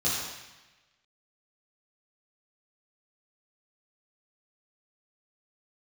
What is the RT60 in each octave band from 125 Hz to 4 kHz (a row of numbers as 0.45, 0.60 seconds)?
1.2, 1.1, 1.0, 1.1, 1.3, 1.1 seconds